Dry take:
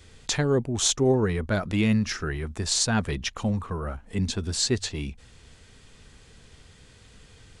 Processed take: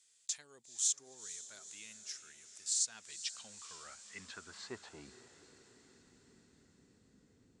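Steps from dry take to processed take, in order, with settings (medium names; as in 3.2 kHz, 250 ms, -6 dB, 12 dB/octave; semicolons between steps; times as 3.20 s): band-pass sweep 7.7 kHz -> 260 Hz, 2.79–6.04 s; on a send: echo that smears into a reverb 475 ms, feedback 62%, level -13 dB; on the sum: trim -4.5 dB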